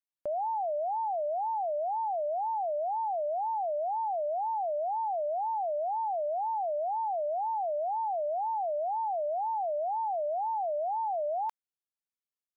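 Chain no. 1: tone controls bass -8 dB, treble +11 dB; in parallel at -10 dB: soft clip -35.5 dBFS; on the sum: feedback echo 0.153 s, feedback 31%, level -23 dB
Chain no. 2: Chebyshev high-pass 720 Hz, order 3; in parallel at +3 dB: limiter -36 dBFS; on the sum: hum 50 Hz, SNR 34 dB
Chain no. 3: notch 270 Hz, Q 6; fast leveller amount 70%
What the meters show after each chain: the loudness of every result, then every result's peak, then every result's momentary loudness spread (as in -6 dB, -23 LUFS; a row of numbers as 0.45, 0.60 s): -30.5, -28.5, -31.5 LUFS; -22.0, -23.5, -26.0 dBFS; 0, 1, 0 LU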